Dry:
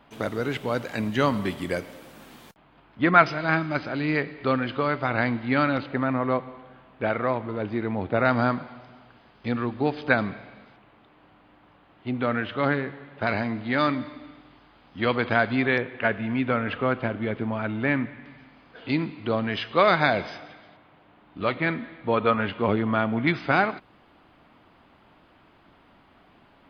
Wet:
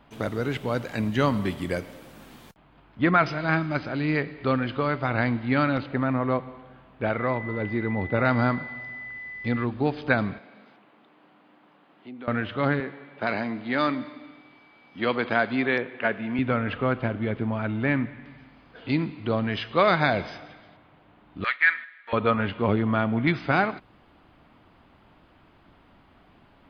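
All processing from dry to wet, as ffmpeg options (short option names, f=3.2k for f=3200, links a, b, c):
-filter_complex "[0:a]asettb=1/sr,asplit=3[a][b][c];[a]atrim=end=7.184[d];[b]atrim=start=7.18:end=9.64,asetpts=PTS-STARTPTS,afade=t=in:d=0.004:c=qsin,afade=t=out:st=2.456:d=0.004:c=qsin,aeval=exprs='val(0)+0.02*sin(2*PI*2000*n/s)':c=same,bandreject=f=680:w=14[e];[c]atrim=start=9.636[f];[d][e]acrossfade=d=0.004:c1=hsin:c2=qsin[g];[g][f]acrossfade=d=0.004:c1=qsin:c2=hsin,asettb=1/sr,asplit=3[h][i][j];[h]atrim=end=10.384[k];[i]atrim=start=10.38:end=12.28,asetpts=PTS-STARTPTS,afade=t=in:d=0.004:c=qsin,afade=t=out:st=1.896:d=0.004:c=qsin,highpass=f=190:w=0.5412,highpass=f=190:w=1.3066,acompressor=threshold=-47dB:ratio=2:attack=3.2:release=140:knee=1:detection=peak[l];[j]atrim=start=12.276[m];[k][l]acrossfade=d=0.004:c1=hsin:c2=qsin[n];[n][m]acrossfade=d=0.004:c1=qsin:c2=hsin,asettb=1/sr,asplit=3[o][p][q];[o]atrim=end=12.804[r];[p]atrim=start=12.8:end=16.39,asetpts=PTS-STARTPTS,afade=t=in:d=0.004:c=qsin,afade=t=out:st=3.586:d=0.004:c=qsin,highpass=210,aeval=exprs='val(0)+0.00178*sin(2*PI*2300*n/s)':c=same[s];[q]atrim=start=16.386[t];[r][s]acrossfade=d=0.004:c1=hsin:c2=qsin[u];[u][t]acrossfade=d=0.004:c1=qsin:c2=hsin,asettb=1/sr,asplit=3[v][w][x];[v]atrim=end=21.444[y];[w]atrim=start=21.44:end=22.13,asetpts=PTS-STARTPTS,afade=t=in:d=0.004:c=qsin,afade=t=out:st=0.686:d=0.004:c=qsin,agate=range=-8dB:threshold=-36dB:ratio=16:release=100:detection=peak,highpass=f=1.7k:t=q:w=4.3[z];[x]atrim=start=22.126[aa];[y][z]acrossfade=d=0.004:c1=hsin:c2=qsin[ab];[ab][aa]acrossfade=d=0.004:c1=qsin:c2=hsin,lowshelf=f=150:g=7.5,alimiter=level_in=5dB:limit=-1dB:release=50:level=0:latency=1,volume=-6.5dB"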